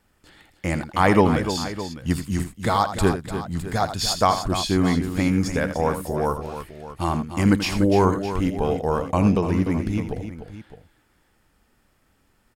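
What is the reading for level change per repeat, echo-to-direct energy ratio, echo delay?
no regular repeats, -6.5 dB, 83 ms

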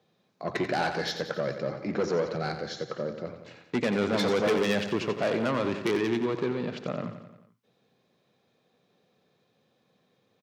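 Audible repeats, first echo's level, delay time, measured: 5, -9.5 dB, 89 ms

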